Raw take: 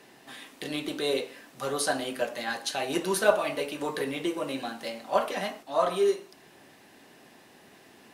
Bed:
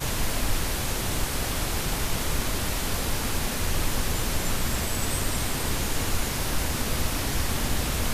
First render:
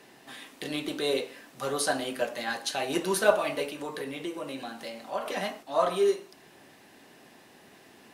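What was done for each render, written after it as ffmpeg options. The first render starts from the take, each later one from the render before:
-filter_complex "[0:a]asettb=1/sr,asplit=3[s0][s1][s2];[s0]atrim=end=3.704[s3];[s1]atrim=start=3.7:end=5.26,asetpts=PTS-STARTPTS,afade=t=in:d=0.004:c=qsin,afade=t=out:st=1.556:d=0.004:c=qsin,acompressor=threshold=0.01:ratio=1.5:attack=3.2:release=140:knee=1:detection=peak[s4];[s2]atrim=start=5.256[s5];[s3][s4]acrossfade=d=0.004:c1=hsin:c2=qsin[s6];[s6][s5]acrossfade=d=0.004:c1=qsin:c2=hsin"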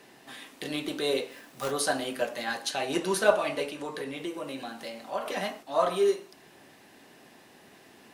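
-filter_complex "[0:a]asplit=3[s0][s1][s2];[s0]afade=t=out:st=1.3:d=0.02[s3];[s1]acrusher=bits=2:mode=log:mix=0:aa=0.000001,afade=t=in:st=1.3:d=0.02,afade=t=out:st=1.7:d=0.02[s4];[s2]afade=t=in:st=1.7:d=0.02[s5];[s3][s4][s5]amix=inputs=3:normalize=0,asettb=1/sr,asplit=3[s6][s7][s8];[s6]atrim=end=2.704[s9];[s7]atrim=start=2.7:end=4.17,asetpts=PTS-STARTPTS,afade=t=in:d=0.004:c=qsin,afade=t=out:st=1.466:d=0.004:c=qsin,lowpass=11000[s10];[s8]atrim=start=4.166[s11];[s9][s10]acrossfade=d=0.004:c1=hsin:c2=qsin[s12];[s12][s11]acrossfade=d=0.004:c1=qsin:c2=hsin"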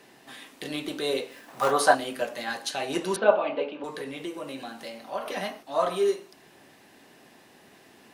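-filter_complex "[0:a]asettb=1/sr,asplit=3[s0][s1][s2];[s0]atrim=end=1.484[s3];[s1]atrim=start=1.48:end=1.95,asetpts=PTS-STARTPTS,afade=t=in:d=0.004:c=qsin,afade=t=out:st=0.466:d=0.004:c=qsin,equalizer=f=940:w=0.71:g=13[s4];[s2]atrim=start=1.946[s5];[s3][s4]acrossfade=d=0.004:c1=hsin:c2=qsin[s6];[s6][s5]acrossfade=d=0.004:c1=qsin:c2=hsin,asettb=1/sr,asplit=3[s7][s8][s9];[s7]atrim=end=3.164[s10];[s8]atrim=start=3.16:end=3.84,asetpts=PTS-STARTPTS,afade=t=in:d=0.004:c=qsin,afade=t=out:st=0.676:d=0.004:c=qsin,highpass=f=190:w=0.5412,highpass=f=190:w=1.3066,equalizer=f=230:t=q:w=4:g=4,equalizer=f=520:t=q:w=4:g=5,equalizer=f=850:t=q:w=4:g=4,equalizer=f=1900:t=q:w=4:g=-8,lowpass=f=3100:w=0.5412,lowpass=f=3100:w=1.3066[s11];[s9]atrim=start=3.836[s12];[s10][s11]acrossfade=d=0.004:c1=hsin:c2=qsin[s13];[s13][s12]acrossfade=d=0.004:c1=qsin:c2=hsin,asettb=1/sr,asplit=3[s14][s15][s16];[s14]atrim=end=4.974[s17];[s15]atrim=start=4.97:end=5.64,asetpts=PTS-STARTPTS,afade=t=in:d=0.004:c=qsin,afade=t=out:st=0.666:d=0.004:c=qsin,bandreject=f=7500:w=5.7[s18];[s16]atrim=start=5.636[s19];[s17][s18]acrossfade=d=0.004:c1=hsin:c2=qsin[s20];[s20][s19]acrossfade=d=0.004:c1=qsin:c2=hsin"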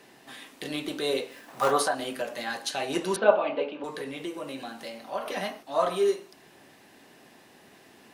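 -filter_complex "[0:a]asettb=1/sr,asplit=3[s0][s1][s2];[s0]atrim=end=1.824[s3];[s1]atrim=start=1.82:end=2.64,asetpts=PTS-STARTPTS,afade=t=in:d=0.004:c=qsin,afade=t=out:st=0.816:d=0.004:c=qsin,acompressor=threshold=0.0501:ratio=2.5:attack=3.2:release=140:knee=1:detection=peak[s4];[s2]atrim=start=2.636[s5];[s3][s4]acrossfade=d=0.004:c1=hsin:c2=qsin[s6];[s6][s5]acrossfade=d=0.004:c1=qsin:c2=hsin"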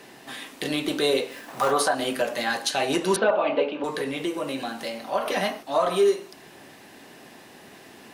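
-af "acontrast=84,alimiter=limit=0.237:level=0:latency=1:release=177"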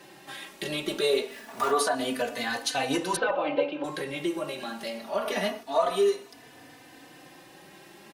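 -filter_complex "[0:a]asplit=2[s0][s1];[s1]adelay=3.3,afreqshift=0.26[s2];[s0][s2]amix=inputs=2:normalize=1"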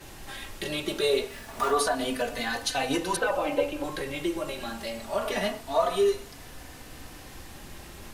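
-filter_complex "[1:a]volume=0.112[s0];[0:a][s0]amix=inputs=2:normalize=0"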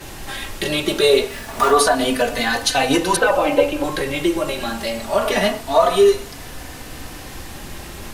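-af "volume=3.35,alimiter=limit=0.708:level=0:latency=1"

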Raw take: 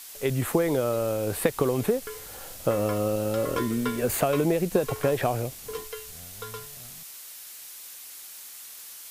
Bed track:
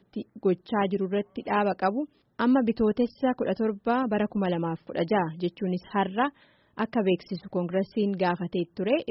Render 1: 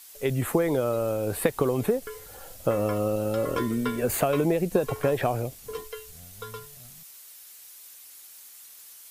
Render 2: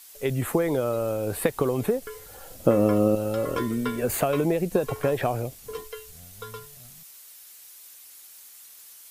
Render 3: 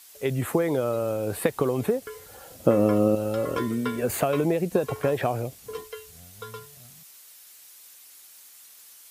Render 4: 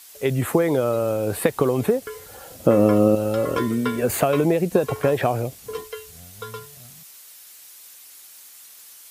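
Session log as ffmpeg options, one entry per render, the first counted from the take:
-af "afftdn=nr=7:nf=-44"
-filter_complex "[0:a]asettb=1/sr,asplit=3[s0][s1][s2];[s0]atrim=end=2.514[s3];[s1]atrim=start=2.51:end=3.15,asetpts=PTS-STARTPTS,afade=t=in:d=0.004:c=qsin,afade=t=out:st=0.636:d=0.004:c=qsin,equalizer=f=260:w=0.77:g=10[s4];[s2]atrim=start=3.146[s5];[s3][s4]acrossfade=d=0.004:c1=hsin:c2=qsin[s6];[s6][s5]acrossfade=d=0.004:c1=qsin:c2=hsin"
-af "highpass=68,highshelf=f=9500:g=-3.5"
-af "volume=1.68,alimiter=limit=0.708:level=0:latency=1"

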